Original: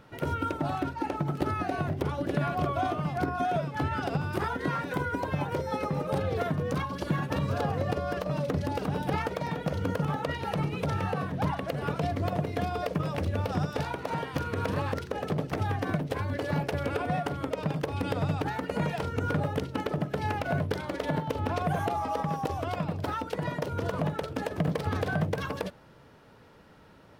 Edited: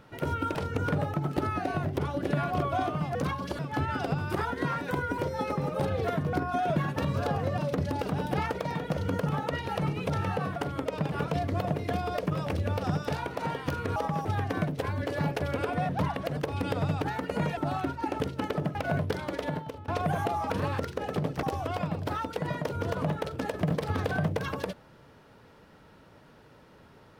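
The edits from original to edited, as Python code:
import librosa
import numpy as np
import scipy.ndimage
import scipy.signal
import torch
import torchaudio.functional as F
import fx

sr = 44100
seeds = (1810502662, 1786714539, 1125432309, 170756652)

y = fx.edit(x, sr, fx.swap(start_s=0.55, length_s=0.63, other_s=18.97, other_length_s=0.59),
    fx.swap(start_s=3.19, length_s=0.43, other_s=6.66, other_length_s=0.44),
    fx.cut(start_s=5.21, length_s=0.3),
    fx.cut(start_s=7.92, length_s=0.42),
    fx.swap(start_s=11.32, length_s=0.48, other_s=17.21, other_length_s=0.56),
    fx.swap(start_s=14.64, length_s=0.93, other_s=22.11, other_length_s=0.29),
    fx.cut(start_s=20.11, length_s=0.25),
    fx.fade_out_to(start_s=20.95, length_s=0.54, floor_db=-19.5), tone=tone)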